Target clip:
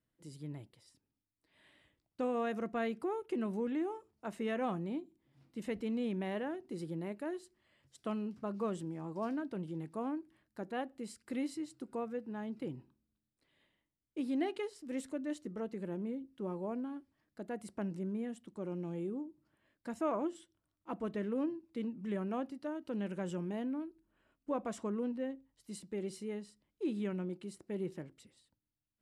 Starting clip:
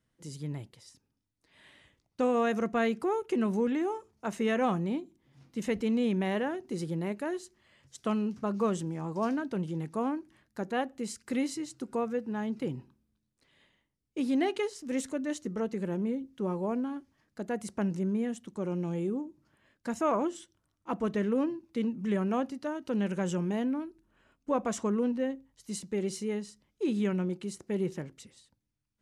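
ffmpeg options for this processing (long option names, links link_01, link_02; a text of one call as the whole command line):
ffmpeg -i in.wav -af "equalizer=frequency=315:width_type=o:width=0.33:gain=5,equalizer=frequency=630:width_type=o:width=0.33:gain=3,equalizer=frequency=6300:width_type=o:width=0.33:gain=-8,volume=-8.5dB" out.wav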